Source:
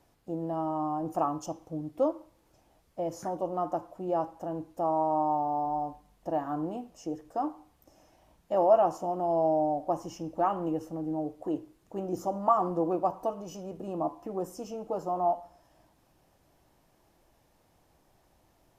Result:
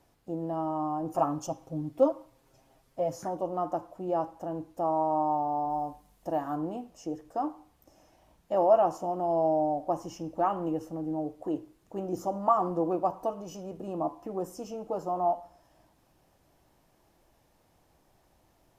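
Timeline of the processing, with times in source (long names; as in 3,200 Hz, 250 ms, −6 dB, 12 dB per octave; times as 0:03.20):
0:01.13–0:03.17: comb filter 7.5 ms, depth 78%
0:05.69–0:06.55: high-shelf EQ 8,000 Hz → 4,600 Hz +8 dB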